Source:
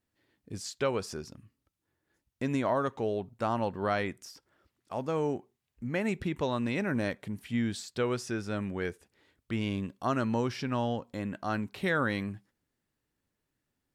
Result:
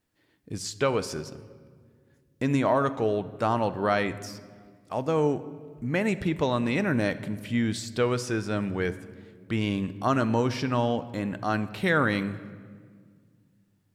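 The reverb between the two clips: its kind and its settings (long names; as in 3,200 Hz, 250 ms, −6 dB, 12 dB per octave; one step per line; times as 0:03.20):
rectangular room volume 2,800 cubic metres, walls mixed, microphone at 0.5 metres
level +5 dB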